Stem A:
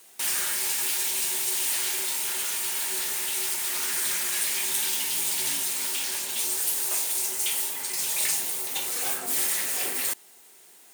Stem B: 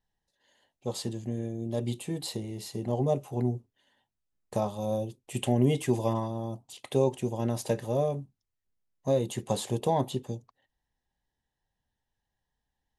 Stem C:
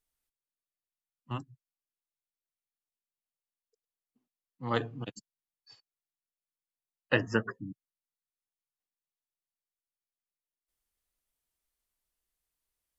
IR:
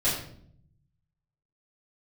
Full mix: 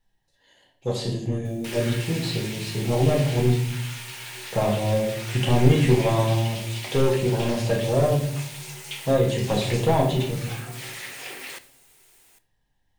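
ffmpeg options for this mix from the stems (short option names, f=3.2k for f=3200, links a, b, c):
-filter_complex "[0:a]adelay=1450,volume=-5dB,asplit=2[a][b];[b]volume=-22dB[c];[1:a]asoftclip=type=tanh:threshold=-20dB,volume=1.5dB,asplit=2[d][e];[e]volume=-7dB[f];[2:a]volume=-14.5dB[g];[3:a]atrim=start_sample=2205[h];[c][f]amix=inputs=2:normalize=0[i];[i][h]afir=irnorm=-1:irlink=0[j];[a][d][g][j]amix=inputs=4:normalize=0,acrossover=split=5200[k][l];[l]acompressor=threshold=-43dB:ratio=4:attack=1:release=60[m];[k][m]amix=inputs=2:normalize=0,equalizer=f=2.4k:w=1.7:g=4"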